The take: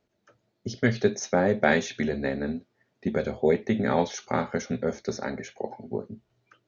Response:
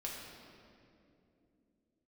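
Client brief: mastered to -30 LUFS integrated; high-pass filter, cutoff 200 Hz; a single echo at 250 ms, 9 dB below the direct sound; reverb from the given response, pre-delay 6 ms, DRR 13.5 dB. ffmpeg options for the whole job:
-filter_complex "[0:a]highpass=200,aecho=1:1:250:0.355,asplit=2[s0][s1];[1:a]atrim=start_sample=2205,adelay=6[s2];[s1][s2]afir=irnorm=-1:irlink=0,volume=0.211[s3];[s0][s3]amix=inputs=2:normalize=0,volume=0.75"

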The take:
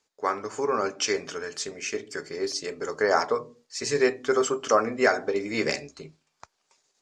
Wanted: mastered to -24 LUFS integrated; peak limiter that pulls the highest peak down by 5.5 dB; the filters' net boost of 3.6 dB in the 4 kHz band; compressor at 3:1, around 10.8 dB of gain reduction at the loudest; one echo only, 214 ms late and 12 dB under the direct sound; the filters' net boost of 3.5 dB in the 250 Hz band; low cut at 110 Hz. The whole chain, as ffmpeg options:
-af "highpass=110,equalizer=f=250:t=o:g=5,equalizer=f=4000:t=o:g=5,acompressor=threshold=0.0316:ratio=3,alimiter=limit=0.0794:level=0:latency=1,aecho=1:1:214:0.251,volume=2.99"

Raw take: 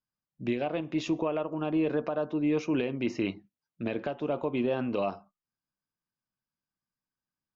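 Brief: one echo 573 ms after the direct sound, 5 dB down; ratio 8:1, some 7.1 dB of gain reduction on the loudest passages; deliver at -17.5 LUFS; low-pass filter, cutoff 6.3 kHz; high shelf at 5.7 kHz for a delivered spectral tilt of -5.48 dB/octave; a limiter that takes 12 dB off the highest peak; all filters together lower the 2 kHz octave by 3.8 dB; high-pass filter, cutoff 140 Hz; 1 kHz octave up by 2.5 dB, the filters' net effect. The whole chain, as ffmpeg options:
-af "highpass=140,lowpass=6300,equalizer=f=1000:t=o:g=5,equalizer=f=2000:t=o:g=-8,highshelf=f=5700:g=7.5,acompressor=threshold=0.0282:ratio=8,alimiter=level_in=3.16:limit=0.0631:level=0:latency=1,volume=0.316,aecho=1:1:573:0.562,volume=17.8"

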